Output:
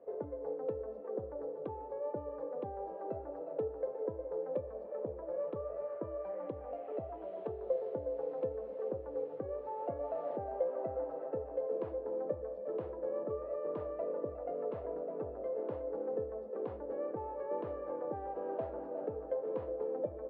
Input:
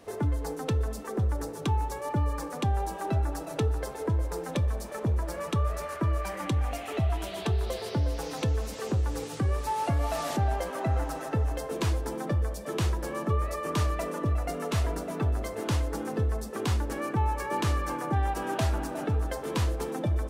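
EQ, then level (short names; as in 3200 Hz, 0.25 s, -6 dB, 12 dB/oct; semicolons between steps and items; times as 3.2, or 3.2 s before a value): band-pass 520 Hz, Q 5.3; air absorption 400 m; +4.5 dB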